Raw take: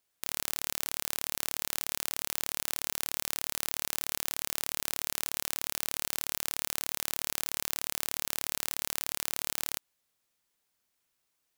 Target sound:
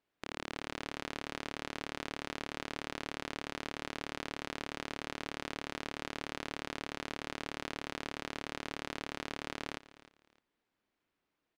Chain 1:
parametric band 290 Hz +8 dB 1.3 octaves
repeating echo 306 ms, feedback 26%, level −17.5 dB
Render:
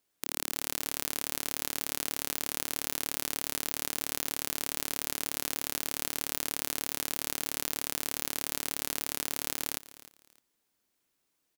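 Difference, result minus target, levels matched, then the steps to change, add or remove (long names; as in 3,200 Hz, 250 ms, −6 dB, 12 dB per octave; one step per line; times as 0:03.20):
2,000 Hz band −8.0 dB
add first: low-pass filter 2,700 Hz 12 dB per octave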